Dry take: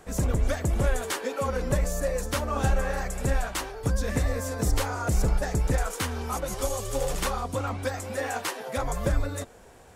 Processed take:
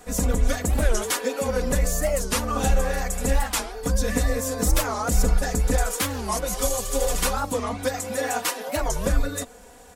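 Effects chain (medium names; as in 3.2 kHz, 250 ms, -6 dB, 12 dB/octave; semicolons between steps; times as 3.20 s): treble shelf 4.3 kHz +6.5 dB; comb 4.1 ms, depth 98%; warped record 45 rpm, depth 250 cents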